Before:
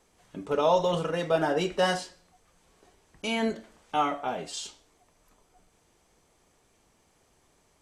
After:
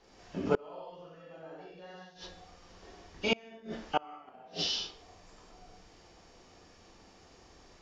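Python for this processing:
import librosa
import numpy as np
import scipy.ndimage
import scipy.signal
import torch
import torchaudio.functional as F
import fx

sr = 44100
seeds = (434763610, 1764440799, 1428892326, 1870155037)

y = fx.freq_compress(x, sr, knee_hz=2600.0, ratio=1.5)
y = fx.rev_gated(y, sr, seeds[0], gate_ms=220, shape='flat', drr_db=-7.5)
y = fx.gate_flip(y, sr, shuts_db=-14.0, range_db=-31)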